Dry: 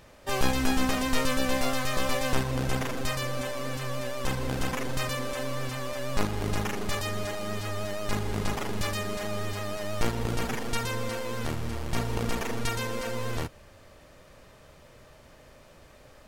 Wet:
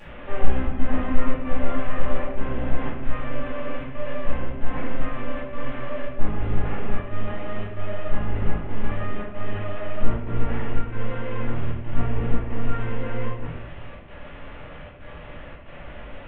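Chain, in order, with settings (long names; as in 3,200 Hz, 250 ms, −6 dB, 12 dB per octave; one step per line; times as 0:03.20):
linear delta modulator 16 kbit/s, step −36.5 dBFS
gate pattern "xxxxx.xxxx.x" 114 BPM −12 dB
rectangular room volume 190 cubic metres, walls mixed, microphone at 2.4 metres
level −7.5 dB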